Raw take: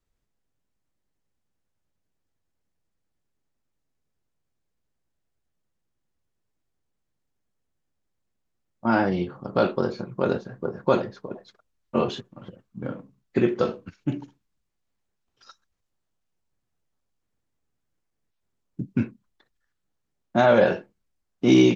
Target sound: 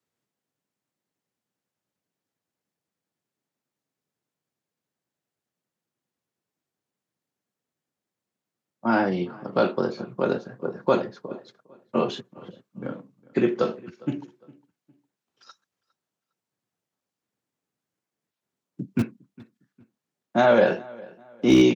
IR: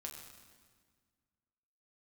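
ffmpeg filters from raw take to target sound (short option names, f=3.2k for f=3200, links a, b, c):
-filter_complex "[0:a]acrossover=split=120|320|2900[a][b][c][d];[a]acrusher=bits=4:mix=0:aa=0.000001[e];[e][b][c][d]amix=inputs=4:normalize=0,asplit=2[f][g];[g]adelay=407,lowpass=f=3.3k:p=1,volume=-23dB,asplit=2[h][i];[i]adelay=407,lowpass=f=3.3k:p=1,volume=0.35[j];[f][h][j]amix=inputs=3:normalize=0"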